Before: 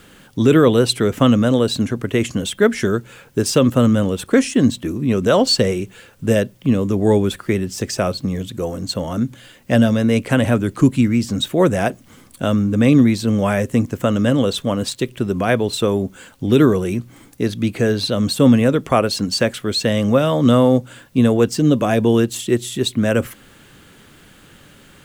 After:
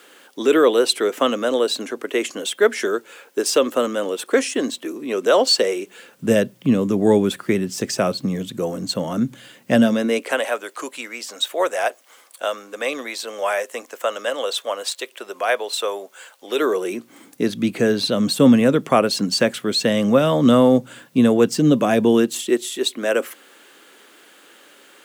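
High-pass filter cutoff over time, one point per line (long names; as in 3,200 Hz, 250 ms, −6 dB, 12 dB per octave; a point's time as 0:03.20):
high-pass filter 24 dB per octave
0:05.79 340 Hz
0:06.30 140 Hz
0:09.71 140 Hz
0:10.48 530 Hz
0:16.44 530 Hz
0:17.53 150 Hz
0:22.04 150 Hz
0:22.70 330 Hz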